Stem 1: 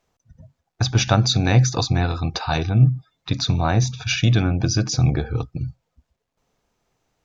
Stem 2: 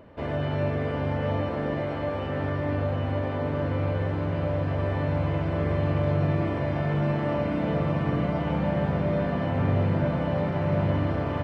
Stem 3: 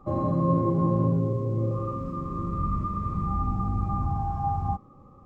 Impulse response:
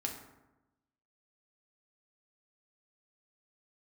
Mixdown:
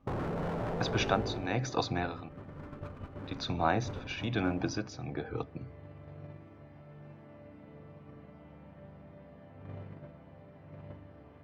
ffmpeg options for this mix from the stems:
-filter_complex "[0:a]acrossover=split=210 3500:gain=0.178 1 0.178[link_01][link_02][link_03];[link_01][link_02][link_03]amix=inputs=3:normalize=0,tremolo=f=1.1:d=0.68,volume=-5.5dB,asplit=3[link_04][link_05][link_06];[link_04]atrim=end=2.29,asetpts=PTS-STARTPTS,afade=type=out:start_time=2.286:duration=0.004:curve=hsin[link_07];[link_05]atrim=start=2.29:end=3.24,asetpts=PTS-STARTPTS,volume=0[link_08];[link_06]atrim=start=3.24,asetpts=PTS-STARTPTS,afade=type=in:duration=0.004:curve=hsin[link_09];[link_07][link_08][link_09]concat=n=3:v=0:a=1,asplit=2[link_10][link_11];[link_11]volume=-20dB[link_12];[1:a]volume=-14dB,asplit=2[link_13][link_14];[link_14]volume=-15dB[link_15];[2:a]equalizer=frequency=100:width=0.31:gain=14,alimiter=limit=-11dB:level=0:latency=1:release=11,aeval=exprs='0.119*(abs(mod(val(0)/0.119+3,4)-2)-1)':channel_layout=same,volume=-5dB,afade=type=out:start_time=1.1:duration=0.35:silence=0.316228,asplit=2[link_16][link_17];[link_17]volume=-18dB[link_18];[link_13][link_16]amix=inputs=2:normalize=0,agate=range=-27dB:threshold=-34dB:ratio=16:detection=peak,acompressor=threshold=-35dB:ratio=6,volume=0dB[link_19];[3:a]atrim=start_sample=2205[link_20];[link_12][link_15][link_18]amix=inputs=3:normalize=0[link_21];[link_21][link_20]afir=irnorm=-1:irlink=0[link_22];[link_10][link_19][link_22]amix=inputs=3:normalize=0"

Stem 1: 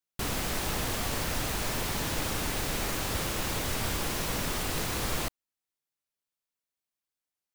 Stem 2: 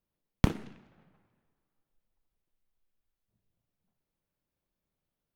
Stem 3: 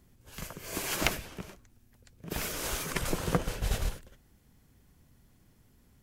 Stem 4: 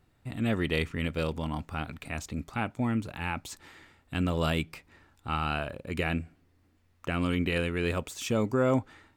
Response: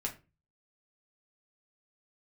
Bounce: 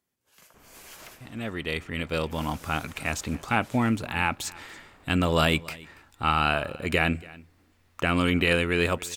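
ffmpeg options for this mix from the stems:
-filter_complex "[0:a]lowpass=1500,alimiter=level_in=7dB:limit=-24dB:level=0:latency=1,volume=-7dB,adelay=350,volume=-14.5dB[link_01];[2:a]highpass=frequency=340:poles=1,asoftclip=type=tanh:threshold=-27.5dB,volume=-11dB[link_02];[3:a]dynaudnorm=framelen=250:gausssize=9:maxgain=12dB,adelay=950,volume=-2.5dB,asplit=2[link_03][link_04];[link_04]volume=-22dB,aecho=0:1:283:1[link_05];[link_01][link_02][link_03][link_05]amix=inputs=4:normalize=0,lowshelf=frequency=440:gain=-6"

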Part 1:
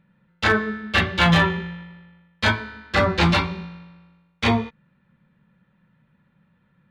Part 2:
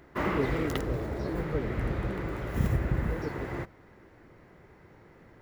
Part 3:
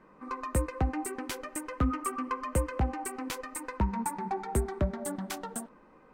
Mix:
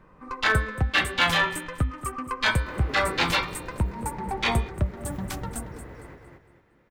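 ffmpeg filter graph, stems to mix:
ffmpeg -i stem1.wav -i stem2.wav -i stem3.wav -filter_complex "[0:a]highpass=frequency=890:poles=1,volume=-1.5dB[link_01];[1:a]adelay=2500,volume=-10.5dB,asplit=2[link_02][link_03];[link_03]volume=-3.5dB[link_04];[2:a]lowshelf=frequency=160:width_type=q:width=1.5:gain=11,acompressor=threshold=-24dB:ratio=6,volume=2dB,asplit=2[link_05][link_06];[link_06]volume=-13.5dB[link_07];[link_04][link_07]amix=inputs=2:normalize=0,aecho=0:1:229|458|687|916|1145:1|0.32|0.102|0.0328|0.0105[link_08];[link_01][link_02][link_05][link_08]amix=inputs=4:normalize=0" out.wav

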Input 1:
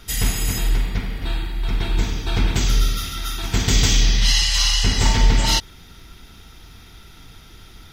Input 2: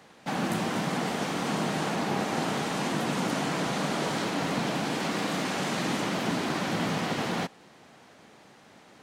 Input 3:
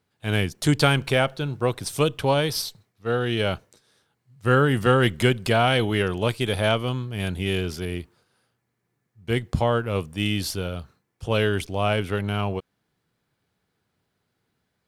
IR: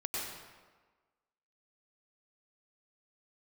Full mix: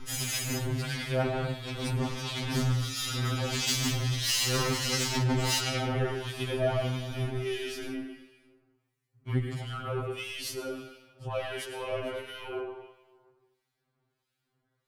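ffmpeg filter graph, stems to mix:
-filter_complex "[0:a]lowpass=11000,aecho=1:1:3.9:0.32,volume=2.5dB,asplit=2[link_01][link_02];[link_02]volume=-12.5dB[link_03];[2:a]volume=-4dB,asplit=2[link_04][link_05];[link_05]volume=-4.5dB[link_06];[link_04]alimiter=limit=-20dB:level=0:latency=1,volume=0dB[link_07];[3:a]atrim=start_sample=2205[link_08];[link_03][link_06]amix=inputs=2:normalize=0[link_09];[link_09][link_08]afir=irnorm=-1:irlink=0[link_10];[link_01][link_07][link_10]amix=inputs=3:normalize=0,asoftclip=type=tanh:threshold=-17.5dB,acrossover=split=1800[link_11][link_12];[link_11]aeval=exprs='val(0)*(1-0.7/2+0.7/2*cos(2*PI*1.5*n/s))':channel_layout=same[link_13];[link_12]aeval=exprs='val(0)*(1-0.7/2-0.7/2*cos(2*PI*1.5*n/s))':channel_layout=same[link_14];[link_13][link_14]amix=inputs=2:normalize=0,afftfilt=real='re*2.45*eq(mod(b,6),0)':imag='im*2.45*eq(mod(b,6),0)':win_size=2048:overlap=0.75"

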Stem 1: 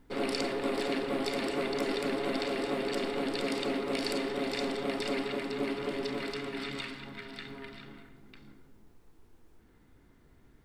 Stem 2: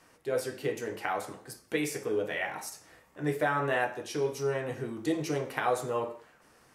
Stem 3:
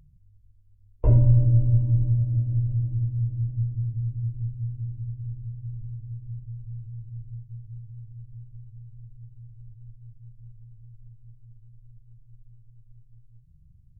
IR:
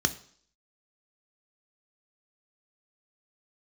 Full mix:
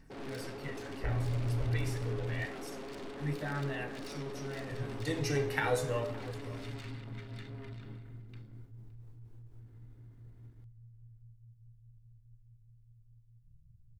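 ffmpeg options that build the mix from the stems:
-filter_complex "[0:a]lowshelf=frequency=490:gain=9.5,aeval=exprs='(tanh(63.1*val(0)+0.55)-tanh(0.55))/63.1':channel_layout=same,volume=-6.5dB,asplit=2[link_01][link_02];[link_02]volume=-21.5dB[link_03];[1:a]aphaser=in_gain=1:out_gain=1:delay=2.6:decay=0.5:speed=0.28:type=triangular,volume=-1dB,afade=type=in:start_time=4.62:duration=0.64:silence=0.298538,asplit=3[link_04][link_05][link_06];[link_05]volume=-12dB[link_07];[link_06]volume=-22dB[link_08];[2:a]alimiter=limit=-19dB:level=0:latency=1,volume=-8.5dB,asplit=3[link_09][link_10][link_11];[link_09]atrim=end=1.89,asetpts=PTS-STARTPTS,afade=type=out:start_time=1.886:duration=0.004:curve=hsin[link_12];[link_10]atrim=start=1.89:end=4.71,asetpts=PTS-STARTPTS,volume=0[link_13];[link_11]atrim=start=4.71,asetpts=PTS-STARTPTS,afade=type=in:duration=0.004:curve=hsin[link_14];[link_12][link_13][link_14]concat=n=3:v=0:a=1,asplit=2[link_15][link_16];[link_16]volume=-4dB[link_17];[3:a]atrim=start_sample=2205[link_18];[link_07][link_18]afir=irnorm=-1:irlink=0[link_19];[link_03][link_08][link_17]amix=inputs=3:normalize=0,aecho=0:1:565:1[link_20];[link_01][link_04][link_15][link_19][link_20]amix=inputs=5:normalize=0"

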